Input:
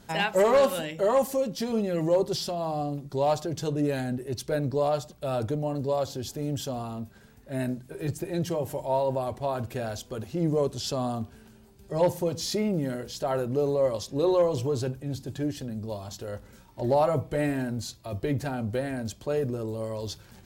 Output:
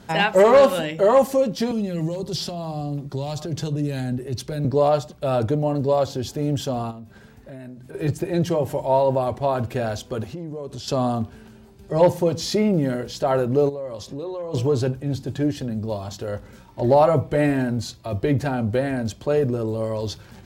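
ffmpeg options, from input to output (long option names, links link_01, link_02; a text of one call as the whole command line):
ffmpeg -i in.wav -filter_complex "[0:a]asettb=1/sr,asplit=3[link_01][link_02][link_03];[link_01]atrim=end=1.714[link_04];[link_02]atrim=start=1.71:end=4.65,asetpts=PTS-STARTPTS,afade=type=in:duration=0.004:curve=qsin,afade=type=out:start_time=2.936:duration=0.004:curve=qsin,acrossover=split=220|3000[link_05][link_06][link_07];[link_06]acompressor=threshold=-38dB:ratio=6:attack=3.2:release=140:knee=2.83:detection=peak[link_08];[link_05][link_08][link_07]amix=inputs=3:normalize=0[link_09];[link_03]atrim=start=4.646[link_10];[link_04][link_09]acrossfade=duration=0.004:curve1=hsin:curve2=qsin[link_11];[link_11][link_10]acrossfade=duration=0.004:curve1=qsin:curve2=hsin,asplit=3[link_12][link_13][link_14];[link_12]afade=type=out:start_time=6.9:duration=0.02[link_15];[link_13]acompressor=threshold=-43dB:ratio=6:attack=3.2:release=140:knee=1:detection=peak,afade=type=in:start_time=6.9:duration=0.02,afade=type=out:start_time=7.93:duration=0.02[link_16];[link_14]afade=type=in:start_time=7.93:duration=0.02[link_17];[link_15][link_16][link_17]amix=inputs=3:normalize=0,asettb=1/sr,asplit=3[link_18][link_19][link_20];[link_18]atrim=end=10.264[link_21];[link_19]atrim=start=10.26:end=10.88,asetpts=PTS-STARTPTS,afade=type=in:duration=0.004:curve=qsin,afade=type=out:start_time=0.616:duration=0.004:curve=qsin,acompressor=threshold=-36dB:ratio=10:attack=3.2:release=140:knee=1:detection=peak[link_22];[link_20]atrim=start=10.876[link_23];[link_21][link_22]acrossfade=duration=0.004:curve1=hsin:curve2=qsin[link_24];[link_24][link_23]acrossfade=duration=0.004:curve1=qsin:curve2=hsin,asplit=3[link_25][link_26][link_27];[link_25]afade=type=out:start_time=13.68:duration=0.02[link_28];[link_26]acompressor=threshold=-37dB:ratio=5:attack=3.2:release=140:knee=1:detection=peak,afade=type=in:start_time=13.68:duration=0.02,afade=type=out:start_time=14.53:duration=0.02[link_29];[link_27]afade=type=in:start_time=14.53:duration=0.02[link_30];[link_28][link_29][link_30]amix=inputs=3:normalize=0,highpass=42,highshelf=frequency=6000:gain=-9,volume=7.5dB" out.wav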